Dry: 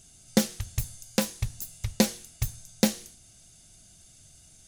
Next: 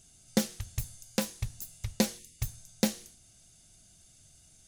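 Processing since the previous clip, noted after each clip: time-frequency box 2.19–2.39 s, 590–1700 Hz -24 dB; trim -4.5 dB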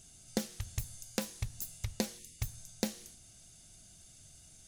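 compression 3:1, threshold -35 dBFS, peak gain reduction 11.5 dB; trim +2 dB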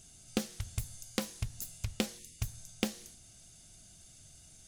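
loudspeaker Doppler distortion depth 0.37 ms; trim +1 dB

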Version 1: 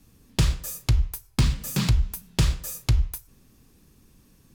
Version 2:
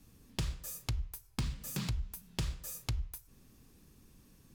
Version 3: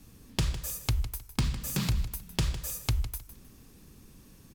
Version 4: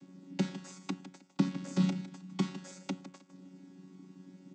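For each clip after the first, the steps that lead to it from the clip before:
compression 2:1, threshold -37 dBFS, peak gain reduction 12 dB; trim -4 dB
feedback delay 156 ms, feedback 26%, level -13 dB; trim +7 dB
vocoder on a held chord bare fifth, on F#3

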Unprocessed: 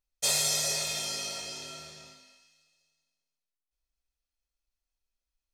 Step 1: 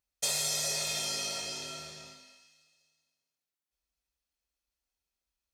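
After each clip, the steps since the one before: high-pass 56 Hz; compression 3:1, threshold -31 dBFS, peak gain reduction 6.5 dB; trim +1.5 dB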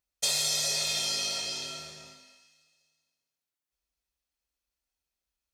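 dynamic bell 3.9 kHz, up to +6 dB, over -46 dBFS, Q 1.1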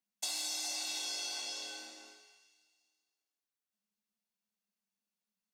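compression 2:1, threshold -32 dBFS, peak gain reduction 5 dB; frequency shift +160 Hz; trim -5.5 dB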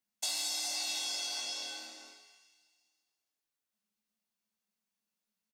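doubling 18 ms -7 dB; trim +1.5 dB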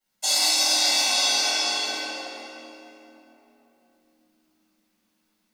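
reverberation RT60 3.4 s, pre-delay 3 ms, DRR -18.5 dB; trim -3 dB

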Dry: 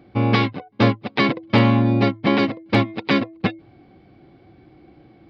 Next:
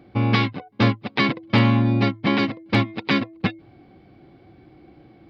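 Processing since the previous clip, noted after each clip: dynamic bell 520 Hz, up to -6 dB, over -31 dBFS, Q 0.91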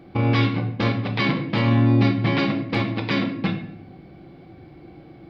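peak limiter -15 dBFS, peak gain reduction 10 dB; simulated room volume 150 m³, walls mixed, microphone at 0.69 m; trim +2.5 dB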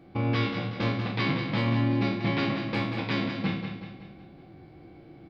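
spectral sustain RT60 0.52 s; feedback delay 187 ms, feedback 47%, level -7.5 dB; trim -7.5 dB

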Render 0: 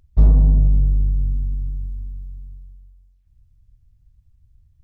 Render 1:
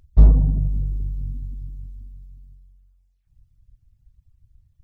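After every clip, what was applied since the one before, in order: reverb removal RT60 1.6 s; trim +2 dB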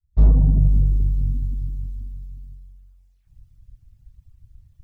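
fade-in on the opening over 0.71 s; trim +7 dB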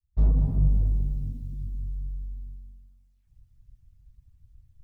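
reverberation RT60 1.6 s, pre-delay 177 ms, DRR 5 dB; trim -7.5 dB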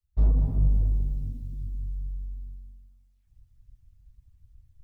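peaking EQ 160 Hz -4.5 dB 0.74 oct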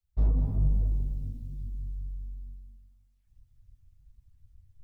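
flange 1.2 Hz, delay 4.2 ms, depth 8.1 ms, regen +66%; trim +2.5 dB

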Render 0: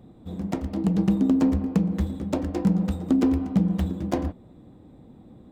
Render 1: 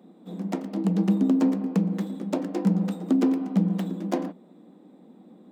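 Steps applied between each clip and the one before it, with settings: elliptic high-pass 180 Hz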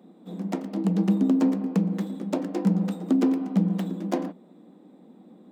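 no audible change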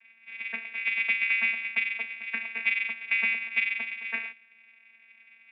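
frequency inversion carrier 2.6 kHz; vocoder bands 16, saw 227 Hz; trim -3.5 dB

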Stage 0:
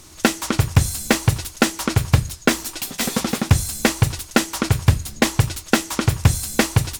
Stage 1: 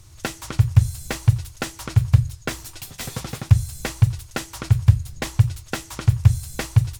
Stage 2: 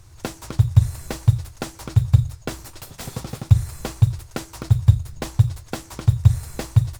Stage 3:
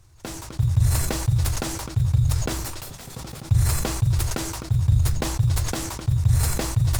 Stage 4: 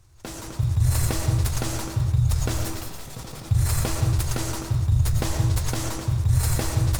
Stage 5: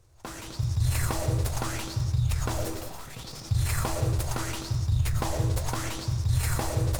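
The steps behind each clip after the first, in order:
resonant low shelf 160 Hz +9.5 dB, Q 3; in parallel at -2.5 dB: compression, threshold -11 dBFS, peak gain reduction 16.5 dB; on the sum: trim -14 dB
dynamic bell 1.8 kHz, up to -6 dB, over -46 dBFS, Q 1.3; in parallel at -5 dB: sample-rate reducer 3.7 kHz, jitter 0%; on the sum: trim -3.5 dB
decay stretcher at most 28 dB/s; trim -7.5 dB
algorithmic reverb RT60 0.91 s, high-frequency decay 0.5×, pre-delay 70 ms, DRR 3 dB; trim -2 dB
sweeping bell 0.73 Hz 470–5600 Hz +11 dB; trim -5 dB

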